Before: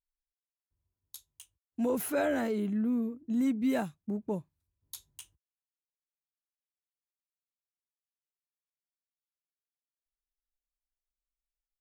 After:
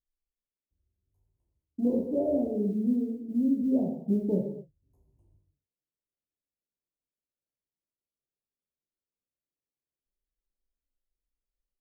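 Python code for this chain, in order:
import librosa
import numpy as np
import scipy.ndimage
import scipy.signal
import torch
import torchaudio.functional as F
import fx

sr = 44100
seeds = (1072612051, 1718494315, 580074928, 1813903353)

y = scipy.signal.sosfilt(scipy.signal.cheby2(4, 50, 1400.0, 'lowpass', fs=sr, output='sos'), x)
y = fx.rider(y, sr, range_db=4, speed_s=0.5)
y = fx.chorus_voices(y, sr, voices=2, hz=1.3, base_ms=18, depth_ms=3.1, mix_pct=30)
y = fx.quant_float(y, sr, bits=6)
y = fx.rev_gated(y, sr, seeds[0], gate_ms=300, shape='falling', drr_db=0.0)
y = y * 10.0 ** (4.0 / 20.0)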